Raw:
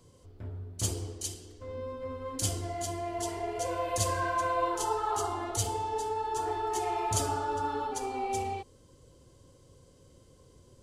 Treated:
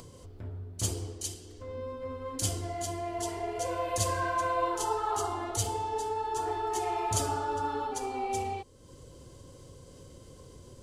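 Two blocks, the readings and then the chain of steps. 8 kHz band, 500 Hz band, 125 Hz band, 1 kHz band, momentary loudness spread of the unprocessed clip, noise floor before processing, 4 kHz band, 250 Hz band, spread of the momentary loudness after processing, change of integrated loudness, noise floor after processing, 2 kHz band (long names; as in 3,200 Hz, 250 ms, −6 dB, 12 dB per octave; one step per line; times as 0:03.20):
0.0 dB, 0.0 dB, 0.0 dB, 0.0 dB, 11 LU, −59 dBFS, 0.0 dB, 0.0 dB, 22 LU, 0.0 dB, −52 dBFS, 0.0 dB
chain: upward compression, threshold −41 dBFS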